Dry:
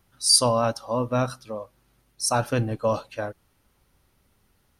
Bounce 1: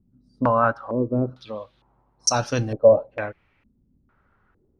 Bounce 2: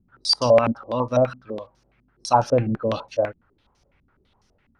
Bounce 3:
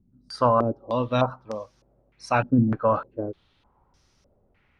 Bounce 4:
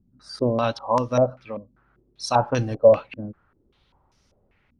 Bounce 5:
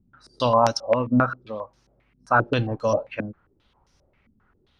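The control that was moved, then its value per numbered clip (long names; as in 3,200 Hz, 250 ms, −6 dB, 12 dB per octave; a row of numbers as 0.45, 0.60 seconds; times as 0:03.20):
low-pass on a step sequencer, speed: 2.2, 12, 3.3, 5.1, 7.5 Hertz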